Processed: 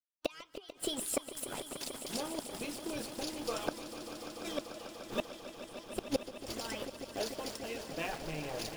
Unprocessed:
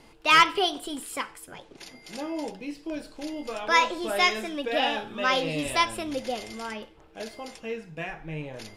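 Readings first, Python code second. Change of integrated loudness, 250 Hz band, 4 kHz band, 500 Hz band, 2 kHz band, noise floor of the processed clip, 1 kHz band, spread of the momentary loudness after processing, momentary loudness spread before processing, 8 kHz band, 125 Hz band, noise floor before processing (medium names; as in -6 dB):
-13.5 dB, -7.5 dB, -13.0 dB, -8.0 dB, -18.5 dB, -57 dBFS, -18.5 dB, 8 LU, 18 LU, -2.0 dB, -7.5 dB, -54 dBFS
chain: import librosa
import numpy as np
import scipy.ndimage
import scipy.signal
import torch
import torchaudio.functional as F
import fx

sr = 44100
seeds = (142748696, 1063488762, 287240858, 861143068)

y = fx.peak_eq(x, sr, hz=2000.0, db=-9.0, octaves=0.97)
y = np.where(np.abs(y) >= 10.0 ** (-44.0 / 20.0), y, 0.0)
y = fx.gate_flip(y, sr, shuts_db=-23.0, range_db=-29)
y = fx.hpss(y, sr, part='harmonic', gain_db=-16)
y = fx.echo_swell(y, sr, ms=147, loudest=5, wet_db=-13.5)
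y = y * 10.0 ** (5.5 / 20.0)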